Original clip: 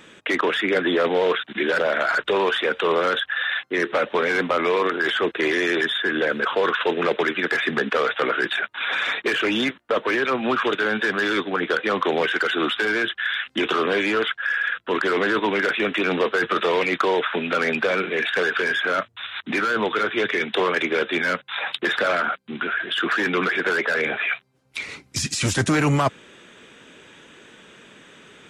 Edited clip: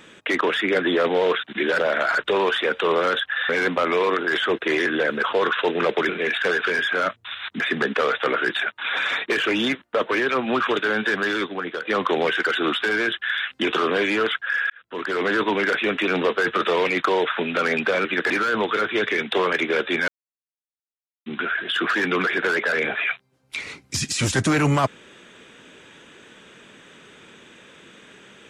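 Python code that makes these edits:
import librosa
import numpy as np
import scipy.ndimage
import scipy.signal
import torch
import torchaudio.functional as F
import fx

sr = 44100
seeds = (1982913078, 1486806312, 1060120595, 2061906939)

y = fx.edit(x, sr, fx.cut(start_s=3.49, length_s=0.73),
    fx.cut(start_s=5.59, length_s=0.49),
    fx.swap(start_s=7.31, length_s=0.25, other_s=18.01, other_length_s=1.51),
    fx.fade_out_to(start_s=11.12, length_s=0.69, floor_db=-9.0),
    fx.fade_in_span(start_s=14.66, length_s=0.64),
    fx.silence(start_s=21.3, length_s=1.18), tone=tone)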